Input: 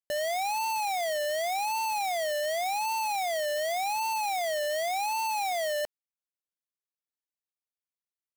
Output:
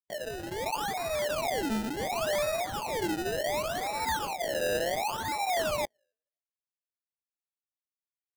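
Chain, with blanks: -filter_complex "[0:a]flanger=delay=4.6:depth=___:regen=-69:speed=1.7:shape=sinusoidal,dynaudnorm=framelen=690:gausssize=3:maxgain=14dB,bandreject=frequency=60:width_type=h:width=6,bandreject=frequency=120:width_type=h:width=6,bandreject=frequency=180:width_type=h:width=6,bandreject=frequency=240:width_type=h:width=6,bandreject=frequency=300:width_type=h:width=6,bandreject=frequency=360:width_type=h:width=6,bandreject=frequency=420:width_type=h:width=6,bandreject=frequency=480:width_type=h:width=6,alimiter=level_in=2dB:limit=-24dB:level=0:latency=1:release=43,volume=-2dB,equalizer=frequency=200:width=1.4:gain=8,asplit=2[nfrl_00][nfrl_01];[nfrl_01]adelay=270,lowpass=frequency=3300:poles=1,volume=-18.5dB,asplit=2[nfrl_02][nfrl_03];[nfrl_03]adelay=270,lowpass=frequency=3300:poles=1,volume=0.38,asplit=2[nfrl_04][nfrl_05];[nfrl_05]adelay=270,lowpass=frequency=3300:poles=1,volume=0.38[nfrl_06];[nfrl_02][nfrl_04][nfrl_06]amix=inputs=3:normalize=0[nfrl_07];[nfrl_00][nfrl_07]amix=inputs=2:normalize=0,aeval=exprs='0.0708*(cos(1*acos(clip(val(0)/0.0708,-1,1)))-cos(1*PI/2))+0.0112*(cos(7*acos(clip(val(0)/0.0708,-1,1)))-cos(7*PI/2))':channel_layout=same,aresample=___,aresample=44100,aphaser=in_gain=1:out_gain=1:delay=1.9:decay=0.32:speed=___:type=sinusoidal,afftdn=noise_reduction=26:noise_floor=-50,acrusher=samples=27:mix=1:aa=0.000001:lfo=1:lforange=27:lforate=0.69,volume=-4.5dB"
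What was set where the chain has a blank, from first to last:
4.2, 22050, 0.42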